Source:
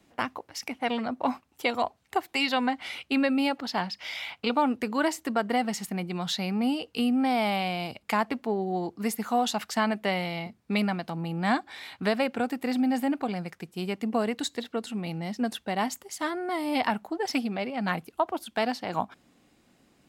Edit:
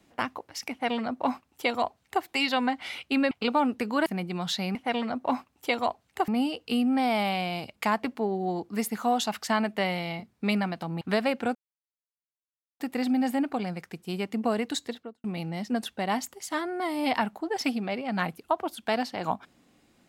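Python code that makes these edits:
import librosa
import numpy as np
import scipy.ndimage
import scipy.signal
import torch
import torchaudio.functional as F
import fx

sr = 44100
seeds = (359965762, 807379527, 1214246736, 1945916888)

y = fx.studio_fade_out(x, sr, start_s=14.5, length_s=0.43)
y = fx.edit(y, sr, fx.duplicate(start_s=0.71, length_s=1.53, to_s=6.55),
    fx.cut(start_s=3.31, length_s=1.02),
    fx.cut(start_s=5.08, length_s=0.78),
    fx.cut(start_s=11.28, length_s=0.67),
    fx.insert_silence(at_s=12.49, length_s=1.25), tone=tone)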